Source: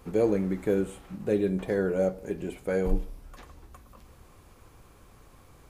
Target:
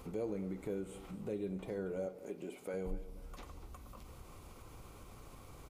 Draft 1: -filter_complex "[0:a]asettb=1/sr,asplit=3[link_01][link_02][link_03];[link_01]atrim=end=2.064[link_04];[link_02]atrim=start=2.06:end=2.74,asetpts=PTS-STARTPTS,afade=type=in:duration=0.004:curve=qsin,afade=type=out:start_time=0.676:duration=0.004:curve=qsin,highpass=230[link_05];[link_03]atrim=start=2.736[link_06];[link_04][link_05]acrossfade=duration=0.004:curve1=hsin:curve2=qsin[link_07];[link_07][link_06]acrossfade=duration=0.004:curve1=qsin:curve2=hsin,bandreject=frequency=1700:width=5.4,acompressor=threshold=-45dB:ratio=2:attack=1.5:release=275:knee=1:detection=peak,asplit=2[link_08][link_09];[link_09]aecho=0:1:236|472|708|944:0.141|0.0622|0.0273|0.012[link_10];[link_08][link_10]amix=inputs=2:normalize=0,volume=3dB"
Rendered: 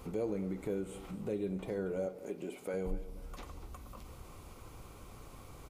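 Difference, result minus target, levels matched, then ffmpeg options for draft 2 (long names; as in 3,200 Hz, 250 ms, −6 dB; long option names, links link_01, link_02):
downward compressor: peak gain reduction −3 dB
-filter_complex "[0:a]asettb=1/sr,asplit=3[link_01][link_02][link_03];[link_01]atrim=end=2.064[link_04];[link_02]atrim=start=2.06:end=2.74,asetpts=PTS-STARTPTS,afade=type=in:duration=0.004:curve=qsin,afade=type=out:start_time=0.676:duration=0.004:curve=qsin,highpass=230[link_05];[link_03]atrim=start=2.736[link_06];[link_04][link_05]acrossfade=duration=0.004:curve1=hsin:curve2=qsin[link_07];[link_07][link_06]acrossfade=duration=0.004:curve1=qsin:curve2=hsin,bandreject=frequency=1700:width=5.4,acompressor=threshold=-51.5dB:ratio=2:attack=1.5:release=275:knee=1:detection=peak,asplit=2[link_08][link_09];[link_09]aecho=0:1:236|472|708|944:0.141|0.0622|0.0273|0.012[link_10];[link_08][link_10]amix=inputs=2:normalize=0,volume=3dB"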